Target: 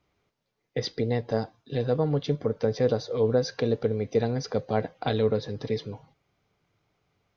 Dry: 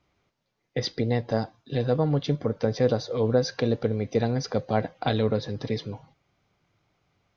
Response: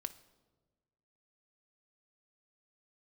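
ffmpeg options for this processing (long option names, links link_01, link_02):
-af "equalizer=frequency=440:width=6.9:gain=5.5,volume=-2.5dB"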